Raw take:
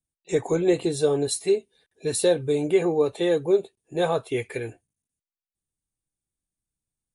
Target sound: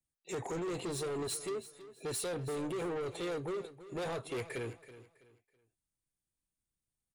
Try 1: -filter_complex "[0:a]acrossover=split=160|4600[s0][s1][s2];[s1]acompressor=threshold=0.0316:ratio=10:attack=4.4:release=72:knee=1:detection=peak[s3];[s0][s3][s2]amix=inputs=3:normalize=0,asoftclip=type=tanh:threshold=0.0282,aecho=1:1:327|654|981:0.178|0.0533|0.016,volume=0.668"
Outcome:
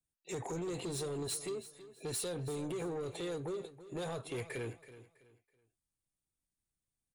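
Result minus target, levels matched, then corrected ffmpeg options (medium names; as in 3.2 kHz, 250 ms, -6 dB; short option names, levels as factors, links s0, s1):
compression: peak gain reduction +7 dB
-filter_complex "[0:a]acrossover=split=160|4600[s0][s1][s2];[s1]acompressor=threshold=0.0794:ratio=10:attack=4.4:release=72:knee=1:detection=peak[s3];[s0][s3][s2]amix=inputs=3:normalize=0,asoftclip=type=tanh:threshold=0.0282,aecho=1:1:327|654|981:0.178|0.0533|0.016,volume=0.668"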